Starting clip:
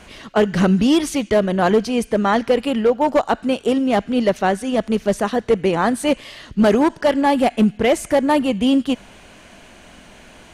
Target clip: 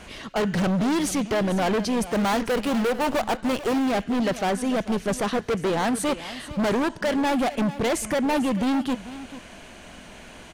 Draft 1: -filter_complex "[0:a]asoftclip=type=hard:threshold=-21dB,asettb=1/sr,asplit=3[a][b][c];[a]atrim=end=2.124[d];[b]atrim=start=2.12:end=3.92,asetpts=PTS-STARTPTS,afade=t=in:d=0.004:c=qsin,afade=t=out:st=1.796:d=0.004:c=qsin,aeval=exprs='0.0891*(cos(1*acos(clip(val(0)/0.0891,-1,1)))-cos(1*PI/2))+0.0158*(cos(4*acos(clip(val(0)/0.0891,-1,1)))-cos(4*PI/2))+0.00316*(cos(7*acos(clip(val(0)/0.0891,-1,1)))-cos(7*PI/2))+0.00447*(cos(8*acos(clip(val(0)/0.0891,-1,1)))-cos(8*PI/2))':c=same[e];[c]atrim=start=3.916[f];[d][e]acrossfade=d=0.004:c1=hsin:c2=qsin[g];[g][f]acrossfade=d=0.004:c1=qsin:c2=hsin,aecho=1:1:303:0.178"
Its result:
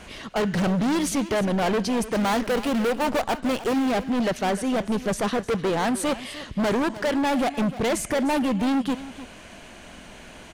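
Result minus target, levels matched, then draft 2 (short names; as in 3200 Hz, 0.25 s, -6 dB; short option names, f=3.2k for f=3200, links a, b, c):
echo 0.14 s early
-filter_complex "[0:a]asoftclip=type=hard:threshold=-21dB,asettb=1/sr,asplit=3[a][b][c];[a]atrim=end=2.124[d];[b]atrim=start=2.12:end=3.92,asetpts=PTS-STARTPTS,afade=t=in:d=0.004:c=qsin,afade=t=out:st=1.796:d=0.004:c=qsin,aeval=exprs='0.0891*(cos(1*acos(clip(val(0)/0.0891,-1,1)))-cos(1*PI/2))+0.0158*(cos(4*acos(clip(val(0)/0.0891,-1,1)))-cos(4*PI/2))+0.00316*(cos(7*acos(clip(val(0)/0.0891,-1,1)))-cos(7*PI/2))+0.00447*(cos(8*acos(clip(val(0)/0.0891,-1,1)))-cos(8*PI/2))':c=same[e];[c]atrim=start=3.916[f];[d][e]acrossfade=d=0.004:c1=hsin:c2=qsin[g];[g][f]acrossfade=d=0.004:c1=qsin:c2=hsin,aecho=1:1:443:0.178"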